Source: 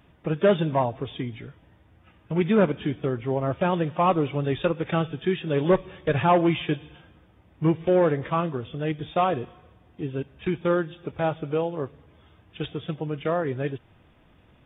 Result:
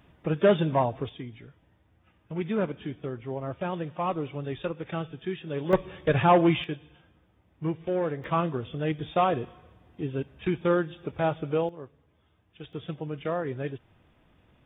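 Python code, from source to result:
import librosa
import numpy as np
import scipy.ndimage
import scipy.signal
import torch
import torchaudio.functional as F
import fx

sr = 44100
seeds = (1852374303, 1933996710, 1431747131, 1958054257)

y = fx.gain(x, sr, db=fx.steps((0.0, -1.0), (1.09, -8.0), (5.73, 0.0), (6.64, -8.0), (8.24, -1.0), (11.69, -12.0), (12.73, -4.5)))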